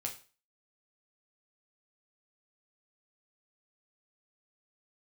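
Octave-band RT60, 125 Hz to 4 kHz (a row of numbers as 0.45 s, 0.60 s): 0.35 s, 0.35 s, 0.35 s, 0.35 s, 0.35 s, 0.35 s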